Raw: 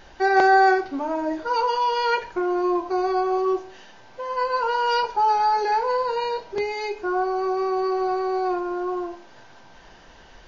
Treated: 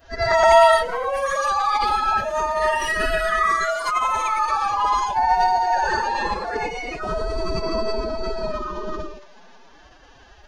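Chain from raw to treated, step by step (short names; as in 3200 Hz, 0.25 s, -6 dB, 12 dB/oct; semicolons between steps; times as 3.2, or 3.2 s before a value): short-time reversal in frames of 0.239 s; echoes that change speed 0.208 s, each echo +6 st, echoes 2; formant-preserving pitch shift +9.5 st; gain +3.5 dB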